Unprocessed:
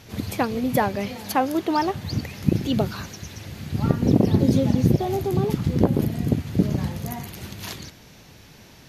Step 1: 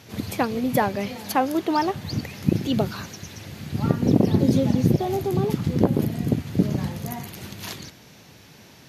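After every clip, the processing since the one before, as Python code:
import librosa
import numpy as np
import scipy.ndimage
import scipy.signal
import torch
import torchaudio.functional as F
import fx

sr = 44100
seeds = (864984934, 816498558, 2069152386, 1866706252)

y = scipy.signal.sosfilt(scipy.signal.butter(2, 94.0, 'highpass', fs=sr, output='sos'), x)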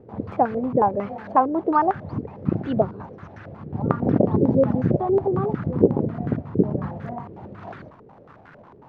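y = fx.dmg_crackle(x, sr, seeds[0], per_s=410.0, level_db=-31.0)
y = fx.filter_held_lowpass(y, sr, hz=11.0, low_hz=430.0, high_hz=1500.0)
y = F.gain(torch.from_numpy(y), -2.5).numpy()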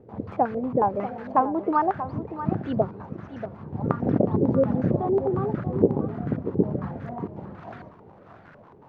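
y = x + 10.0 ** (-11.5 / 20.0) * np.pad(x, (int(636 * sr / 1000.0), 0))[:len(x)]
y = F.gain(torch.from_numpy(y), -3.0).numpy()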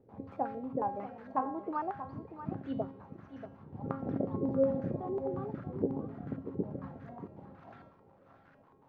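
y = fx.comb_fb(x, sr, f0_hz=270.0, decay_s=0.64, harmonics='all', damping=0.0, mix_pct=80)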